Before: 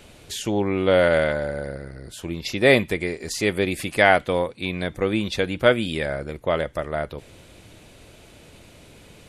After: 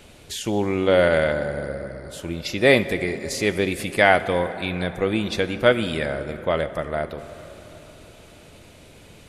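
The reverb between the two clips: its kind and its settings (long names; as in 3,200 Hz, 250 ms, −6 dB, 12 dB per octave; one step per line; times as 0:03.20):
dense smooth reverb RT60 4.4 s, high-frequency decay 0.45×, DRR 11.5 dB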